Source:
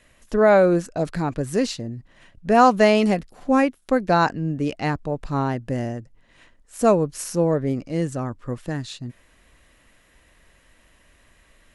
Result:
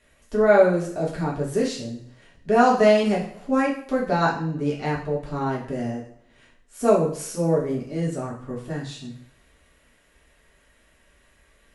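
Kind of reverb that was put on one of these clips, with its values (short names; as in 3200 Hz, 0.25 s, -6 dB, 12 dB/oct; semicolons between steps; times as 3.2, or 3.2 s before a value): two-slope reverb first 0.5 s, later 1.7 s, from -25 dB, DRR -5 dB; gain -8 dB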